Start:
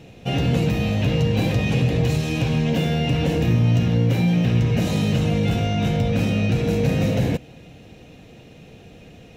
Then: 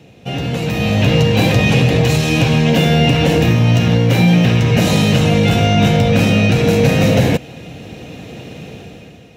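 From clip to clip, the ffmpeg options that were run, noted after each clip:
-filter_complex "[0:a]highpass=73,acrossover=split=550|1900[s0][s1][s2];[s0]alimiter=limit=0.141:level=0:latency=1:release=435[s3];[s3][s1][s2]amix=inputs=3:normalize=0,dynaudnorm=f=170:g=9:m=4.47,volume=1.12"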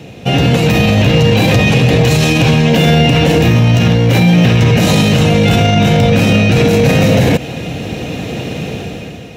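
-af "alimiter=level_in=3.98:limit=0.891:release=50:level=0:latency=1,volume=0.891"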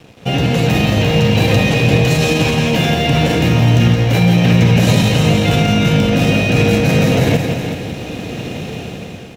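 -filter_complex "[0:a]asplit=2[s0][s1];[s1]aecho=0:1:170:0.501[s2];[s0][s2]amix=inputs=2:normalize=0,aeval=exprs='sgn(val(0))*max(abs(val(0))-0.0178,0)':c=same,asplit=2[s3][s4];[s4]aecho=0:1:375:0.376[s5];[s3][s5]amix=inputs=2:normalize=0,volume=0.631"

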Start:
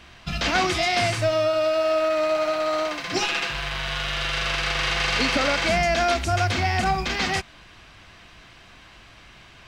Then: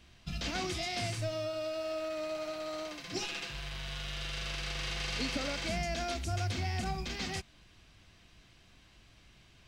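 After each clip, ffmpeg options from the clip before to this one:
-af "equalizer=f=1200:w=0.45:g=-10,volume=0.398"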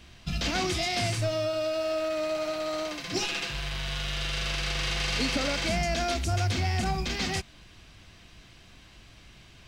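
-af "asoftclip=type=tanh:threshold=0.0501,volume=2.51"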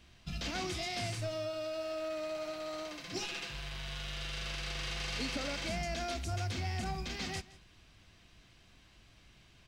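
-af "aecho=1:1:168:0.106,volume=0.355"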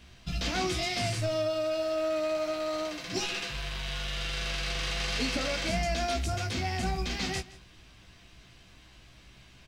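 -filter_complex "[0:a]asplit=2[s0][s1];[s1]adelay=16,volume=0.501[s2];[s0][s2]amix=inputs=2:normalize=0,volume=1.88"

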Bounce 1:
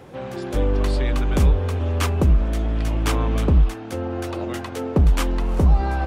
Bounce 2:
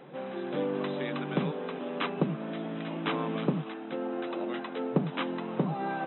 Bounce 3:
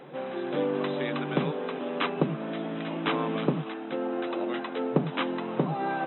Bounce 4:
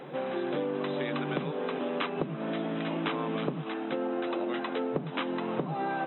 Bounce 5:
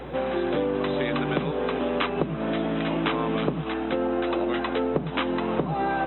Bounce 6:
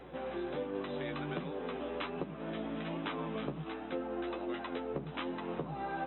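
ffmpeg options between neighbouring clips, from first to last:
-af "afftfilt=real='re*between(b*sr/4096,130,4000)':imag='im*between(b*sr/4096,130,4000)':win_size=4096:overlap=0.75,volume=0.531"
-af "equalizer=f=190:w=4.8:g=-7,volume=1.5"
-af "acompressor=threshold=0.0282:ratio=6,volume=1.41"
-af "aeval=exprs='val(0)+0.00316*(sin(2*PI*60*n/s)+sin(2*PI*2*60*n/s)/2+sin(2*PI*3*60*n/s)/3+sin(2*PI*4*60*n/s)/4+sin(2*PI*5*60*n/s)/5)':c=same,volume=2"
-af "flanger=delay=10:depth=4.8:regen=33:speed=1.3:shape=triangular,volume=0.355"

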